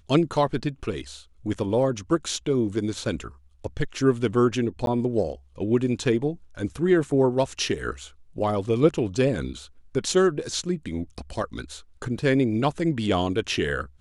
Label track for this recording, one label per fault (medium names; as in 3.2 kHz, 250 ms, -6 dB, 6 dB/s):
4.860000	4.870000	dropout 12 ms